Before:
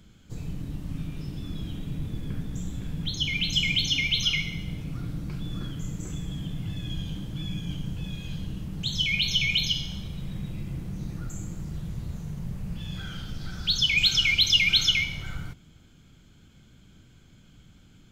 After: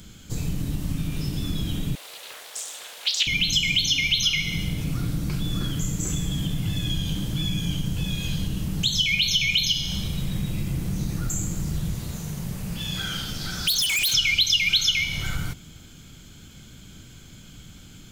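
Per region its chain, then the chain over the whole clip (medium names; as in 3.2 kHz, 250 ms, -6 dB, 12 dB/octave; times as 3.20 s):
1.95–3.27 s: steep high-pass 540 Hz + loudspeaker Doppler distortion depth 0.27 ms
11.95–14.14 s: bass shelf 150 Hz -9.5 dB + hard clipper -27 dBFS
whole clip: treble shelf 4.1 kHz +11.5 dB; compression 3:1, threshold -30 dBFS; trim +8 dB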